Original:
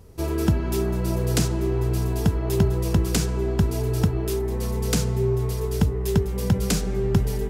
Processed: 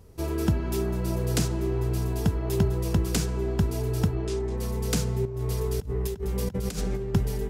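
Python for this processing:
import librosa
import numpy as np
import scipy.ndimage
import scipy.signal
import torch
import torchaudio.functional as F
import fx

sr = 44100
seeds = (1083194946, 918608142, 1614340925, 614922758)

y = fx.lowpass(x, sr, hz=8000.0, slope=24, at=(4.15, 4.56), fade=0.02)
y = fx.over_compress(y, sr, threshold_db=-25.0, ratio=-0.5, at=(5.25, 7.14))
y = y * librosa.db_to_amplitude(-3.5)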